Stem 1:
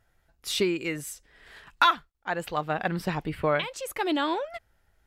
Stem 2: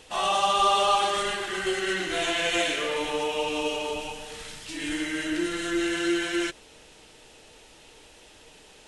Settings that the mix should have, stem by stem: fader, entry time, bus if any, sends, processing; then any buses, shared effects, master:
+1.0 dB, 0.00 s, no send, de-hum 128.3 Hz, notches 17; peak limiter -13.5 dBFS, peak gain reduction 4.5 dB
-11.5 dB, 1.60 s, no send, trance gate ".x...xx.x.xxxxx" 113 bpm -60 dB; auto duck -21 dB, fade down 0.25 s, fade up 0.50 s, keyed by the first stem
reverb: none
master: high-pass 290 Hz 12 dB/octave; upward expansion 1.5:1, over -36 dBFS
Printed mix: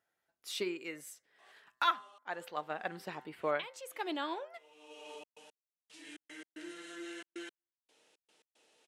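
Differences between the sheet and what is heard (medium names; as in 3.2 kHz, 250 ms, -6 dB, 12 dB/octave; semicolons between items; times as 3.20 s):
stem 1 +1.0 dB -> -5.5 dB; stem 2: entry 1.60 s -> 1.25 s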